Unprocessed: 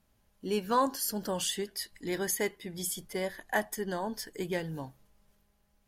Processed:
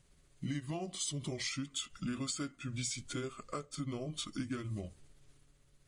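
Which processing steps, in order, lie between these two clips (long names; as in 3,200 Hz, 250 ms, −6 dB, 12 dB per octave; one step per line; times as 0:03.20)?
pitch shift by two crossfaded delay taps −6.5 semitones
downward compressor 6 to 1, threshold −41 dBFS, peak gain reduction 16.5 dB
parametric band 840 Hz −7.5 dB 1.1 octaves
notch filter 460 Hz, Q 12
level +6 dB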